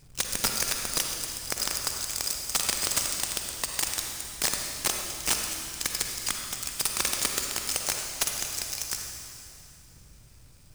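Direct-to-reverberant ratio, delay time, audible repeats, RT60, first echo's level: 2.0 dB, no echo audible, no echo audible, 2.6 s, no echo audible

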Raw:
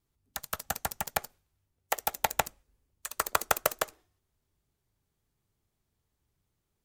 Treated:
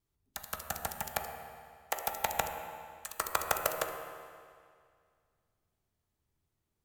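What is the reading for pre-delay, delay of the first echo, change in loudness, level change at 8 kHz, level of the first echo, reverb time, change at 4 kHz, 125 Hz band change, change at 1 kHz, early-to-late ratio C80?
13 ms, no echo audible, −4.0 dB, −4.0 dB, no echo audible, 2.1 s, −4.0 dB, −2.5 dB, −2.5 dB, 6.0 dB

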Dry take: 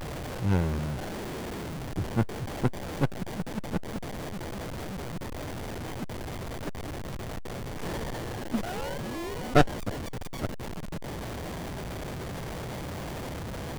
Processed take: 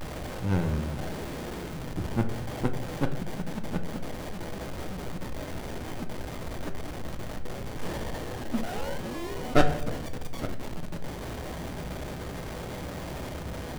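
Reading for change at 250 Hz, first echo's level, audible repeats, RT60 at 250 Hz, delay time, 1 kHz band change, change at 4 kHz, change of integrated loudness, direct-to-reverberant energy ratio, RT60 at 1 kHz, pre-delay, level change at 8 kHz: 0.0 dB, no echo audible, no echo audible, 1.0 s, no echo audible, −1.0 dB, −0.5 dB, −0.5 dB, 6.0 dB, 0.75 s, 3 ms, −1.0 dB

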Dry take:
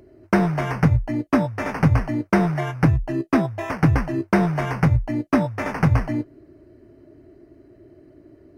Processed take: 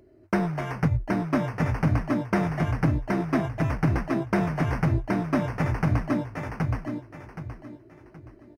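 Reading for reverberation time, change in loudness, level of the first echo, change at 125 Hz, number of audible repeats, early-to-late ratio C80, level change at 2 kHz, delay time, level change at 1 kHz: no reverb audible, −5.0 dB, −3.0 dB, −4.5 dB, 4, no reverb audible, −4.5 dB, 772 ms, −4.5 dB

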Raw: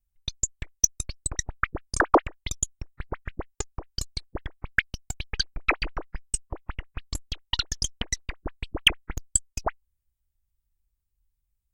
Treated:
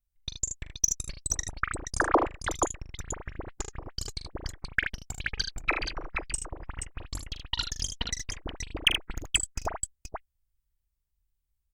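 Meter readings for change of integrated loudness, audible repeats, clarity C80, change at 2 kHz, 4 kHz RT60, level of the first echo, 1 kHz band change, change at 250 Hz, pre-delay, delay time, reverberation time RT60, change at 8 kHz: −3.0 dB, 3, no reverb audible, −2.5 dB, no reverb audible, −9.5 dB, −2.5 dB, −2.5 dB, no reverb audible, 42 ms, no reverb audible, −2.5 dB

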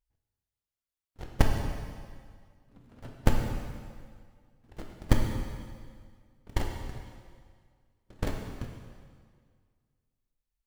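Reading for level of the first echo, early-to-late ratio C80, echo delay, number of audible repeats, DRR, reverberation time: no echo audible, 4.5 dB, no echo audible, no echo audible, 1.5 dB, 1.9 s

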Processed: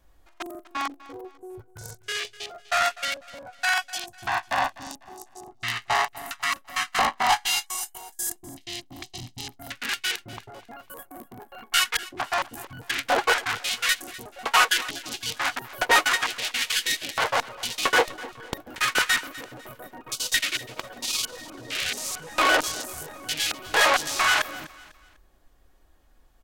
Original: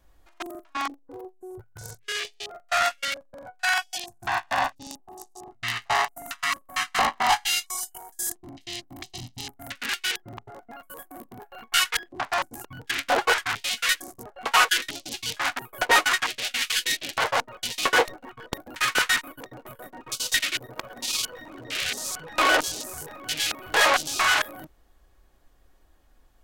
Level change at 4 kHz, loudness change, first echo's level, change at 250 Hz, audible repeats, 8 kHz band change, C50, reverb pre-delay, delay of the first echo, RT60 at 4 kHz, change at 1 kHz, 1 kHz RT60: 0.0 dB, 0.0 dB, −18.5 dB, 0.0 dB, 2, 0.0 dB, no reverb audible, no reverb audible, 249 ms, no reverb audible, 0.0 dB, no reverb audible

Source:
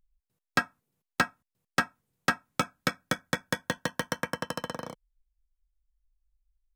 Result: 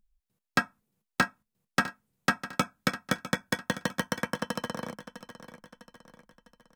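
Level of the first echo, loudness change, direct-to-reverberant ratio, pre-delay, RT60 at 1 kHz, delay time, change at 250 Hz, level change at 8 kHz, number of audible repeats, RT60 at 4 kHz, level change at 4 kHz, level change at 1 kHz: −14.0 dB, +0.5 dB, no reverb audible, no reverb audible, no reverb audible, 653 ms, +3.0 dB, 0.0 dB, 4, no reverb audible, 0.0 dB, 0.0 dB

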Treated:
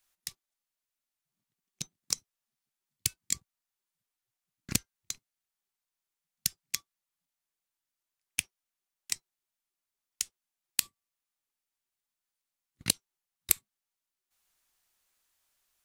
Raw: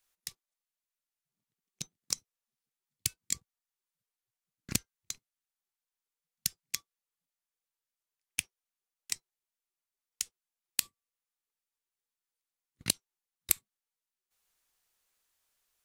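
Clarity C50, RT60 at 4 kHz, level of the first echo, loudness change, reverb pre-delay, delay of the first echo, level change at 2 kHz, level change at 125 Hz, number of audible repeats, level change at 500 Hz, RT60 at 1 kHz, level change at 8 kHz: no reverb audible, no reverb audible, no echo audible, +2.0 dB, no reverb audible, no echo audible, +2.0 dB, +2.0 dB, no echo audible, +0.5 dB, no reverb audible, +2.0 dB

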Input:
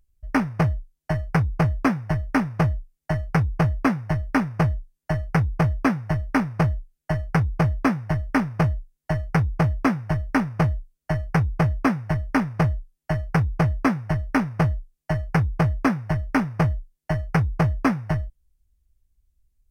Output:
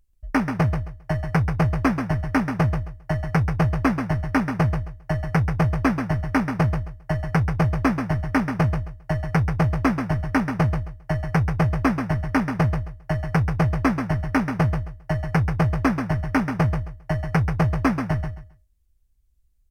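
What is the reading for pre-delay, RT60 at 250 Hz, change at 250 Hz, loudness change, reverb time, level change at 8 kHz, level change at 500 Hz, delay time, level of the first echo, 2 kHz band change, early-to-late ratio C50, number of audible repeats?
no reverb audible, no reverb audible, +0.5 dB, +0.5 dB, no reverb audible, can't be measured, +0.5 dB, 134 ms, −7.5 dB, +0.5 dB, no reverb audible, 3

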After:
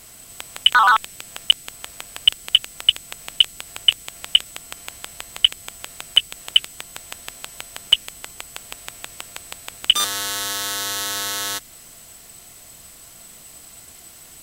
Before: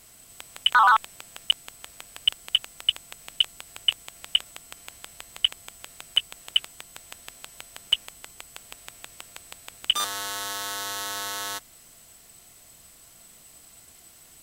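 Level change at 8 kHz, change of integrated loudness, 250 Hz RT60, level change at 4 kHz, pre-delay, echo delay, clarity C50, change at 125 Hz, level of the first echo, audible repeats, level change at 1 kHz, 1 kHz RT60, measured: +8.0 dB, +6.5 dB, no reverb audible, +7.5 dB, no reverb audible, no echo audible, no reverb audible, can't be measured, no echo audible, no echo audible, +2.5 dB, no reverb audible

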